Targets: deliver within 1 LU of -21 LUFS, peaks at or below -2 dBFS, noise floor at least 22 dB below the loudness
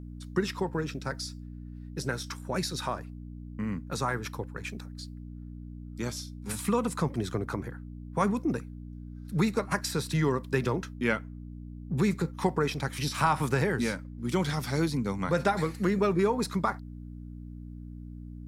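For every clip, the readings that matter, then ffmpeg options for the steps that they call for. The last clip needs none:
hum 60 Hz; harmonics up to 300 Hz; hum level -39 dBFS; loudness -30.5 LUFS; peak -10.0 dBFS; loudness target -21.0 LUFS
-> -af "bandreject=f=60:t=h:w=4,bandreject=f=120:t=h:w=4,bandreject=f=180:t=h:w=4,bandreject=f=240:t=h:w=4,bandreject=f=300:t=h:w=4"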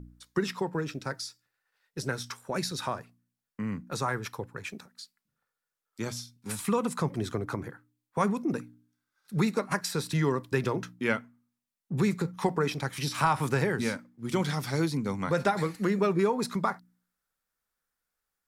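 hum none; loudness -31.0 LUFS; peak -10.5 dBFS; loudness target -21.0 LUFS
-> -af "volume=10dB,alimiter=limit=-2dB:level=0:latency=1"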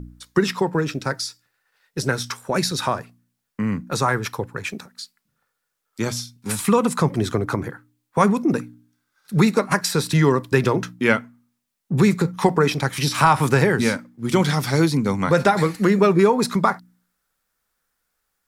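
loudness -21.0 LUFS; peak -2.0 dBFS; noise floor -77 dBFS

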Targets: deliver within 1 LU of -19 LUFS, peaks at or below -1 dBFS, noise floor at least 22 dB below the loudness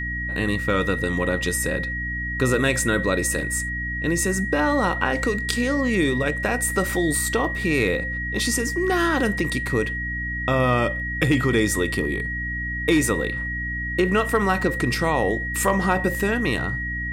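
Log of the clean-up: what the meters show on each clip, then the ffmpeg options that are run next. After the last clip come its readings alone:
hum 60 Hz; harmonics up to 300 Hz; hum level -29 dBFS; steady tone 1900 Hz; tone level -27 dBFS; loudness -22.5 LUFS; peak -4.5 dBFS; loudness target -19.0 LUFS
-> -af "bandreject=f=60:t=h:w=6,bandreject=f=120:t=h:w=6,bandreject=f=180:t=h:w=6,bandreject=f=240:t=h:w=6,bandreject=f=300:t=h:w=6"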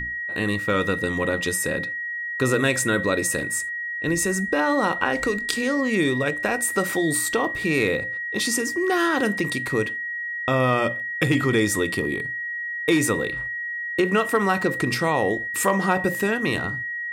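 hum none; steady tone 1900 Hz; tone level -27 dBFS
-> -af "bandreject=f=1.9k:w=30"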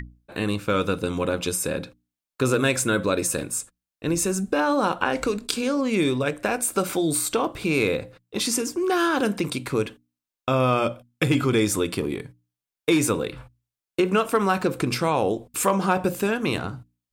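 steady tone none; loudness -24.0 LUFS; peak -4.0 dBFS; loudness target -19.0 LUFS
-> -af "volume=5dB,alimiter=limit=-1dB:level=0:latency=1"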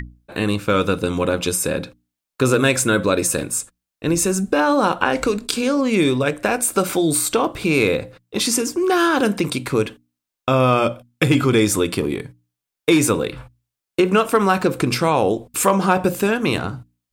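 loudness -19.0 LUFS; peak -1.0 dBFS; noise floor -85 dBFS

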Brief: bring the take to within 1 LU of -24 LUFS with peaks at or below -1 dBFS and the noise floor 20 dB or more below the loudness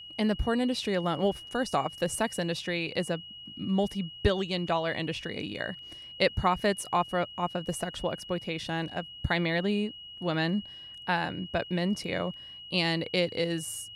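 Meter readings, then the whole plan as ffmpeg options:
steady tone 2900 Hz; tone level -43 dBFS; loudness -30.5 LUFS; peak -12.0 dBFS; loudness target -24.0 LUFS
-> -af "bandreject=f=2.9k:w=30"
-af "volume=6.5dB"

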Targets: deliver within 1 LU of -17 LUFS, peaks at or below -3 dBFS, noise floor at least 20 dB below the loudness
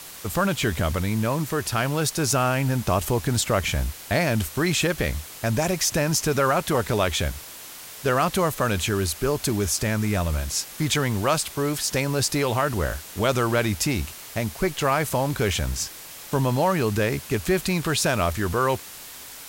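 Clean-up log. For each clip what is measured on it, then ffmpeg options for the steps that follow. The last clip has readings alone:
noise floor -41 dBFS; noise floor target -44 dBFS; loudness -24.0 LUFS; peak -9.0 dBFS; loudness target -17.0 LUFS
-> -af "afftdn=nr=6:nf=-41"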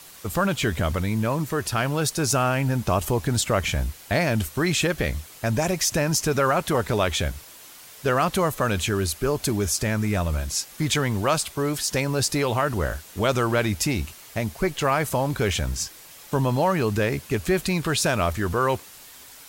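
noise floor -46 dBFS; loudness -24.0 LUFS; peak -9.0 dBFS; loudness target -17.0 LUFS
-> -af "volume=7dB,alimiter=limit=-3dB:level=0:latency=1"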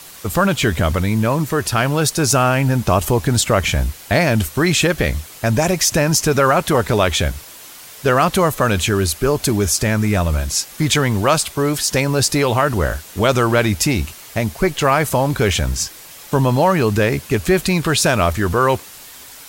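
loudness -17.0 LUFS; peak -3.0 dBFS; noise floor -39 dBFS

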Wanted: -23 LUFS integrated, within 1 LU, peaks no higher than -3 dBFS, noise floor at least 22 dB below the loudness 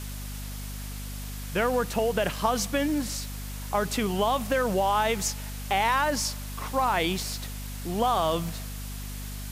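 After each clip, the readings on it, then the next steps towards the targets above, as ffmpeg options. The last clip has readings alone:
hum 50 Hz; harmonics up to 250 Hz; hum level -34 dBFS; noise floor -36 dBFS; noise floor target -50 dBFS; loudness -28.0 LUFS; peak -11.0 dBFS; loudness target -23.0 LUFS
-> -af "bandreject=f=50:t=h:w=4,bandreject=f=100:t=h:w=4,bandreject=f=150:t=h:w=4,bandreject=f=200:t=h:w=4,bandreject=f=250:t=h:w=4"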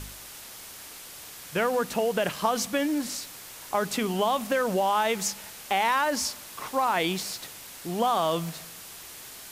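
hum none; noise floor -44 dBFS; noise floor target -49 dBFS
-> -af "afftdn=nr=6:nf=-44"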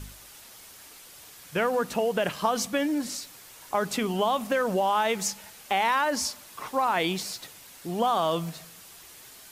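noise floor -49 dBFS; loudness -27.0 LUFS; peak -11.0 dBFS; loudness target -23.0 LUFS
-> -af "volume=4dB"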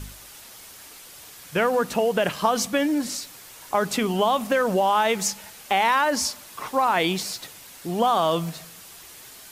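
loudness -23.0 LUFS; peak -7.0 dBFS; noise floor -45 dBFS

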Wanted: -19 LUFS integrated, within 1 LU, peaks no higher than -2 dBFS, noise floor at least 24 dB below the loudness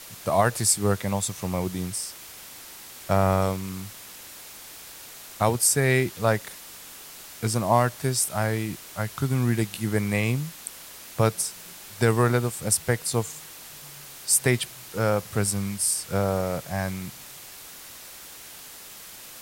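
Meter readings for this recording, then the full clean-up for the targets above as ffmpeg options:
noise floor -44 dBFS; noise floor target -49 dBFS; loudness -25.0 LUFS; peak -7.0 dBFS; loudness target -19.0 LUFS
-> -af "afftdn=nr=6:nf=-44"
-af "volume=6dB,alimiter=limit=-2dB:level=0:latency=1"

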